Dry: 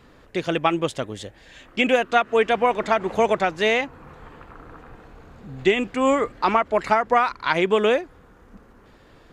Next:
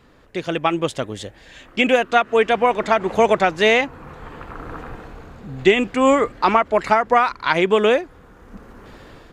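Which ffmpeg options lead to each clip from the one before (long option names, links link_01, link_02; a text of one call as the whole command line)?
ffmpeg -i in.wav -af "dynaudnorm=framelen=300:gausssize=5:maxgain=15dB,volume=-1dB" out.wav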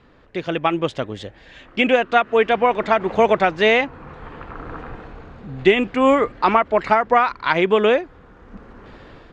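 ffmpeg -i in.wav -af "lowpass=4100" out.wav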